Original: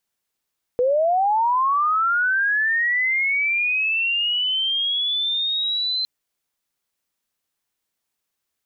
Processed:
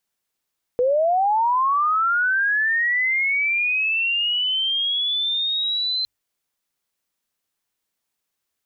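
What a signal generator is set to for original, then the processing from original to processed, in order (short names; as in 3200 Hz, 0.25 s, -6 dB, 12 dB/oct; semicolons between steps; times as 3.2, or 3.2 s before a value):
chirp linear 480 Hz -> 4100 Hz -15.5 dBFS -> -20.5 dBFS 5.26 s
notches 50/100 Hz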